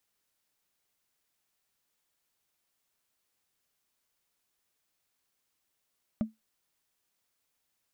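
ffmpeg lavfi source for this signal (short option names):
-f lavfi -i "aevalsrc='0.0841*pow(10,-3*t/0.17)*sin(2*PI*220*t)+0.0266*pow(10,-3*t/0.05)*sin(2*PI*606.5*t)+0.00841*pow(10,-3*t/0.022)*sin(2*PI*1188.9*t)+0.00266*pow(10,-3*t/0.012)*sin(2*PI*1965.3*t)+0.000841*pow(10,-3*t/0.008)*sin(2*PI*2934.8*t)':d=0.45:s=44100"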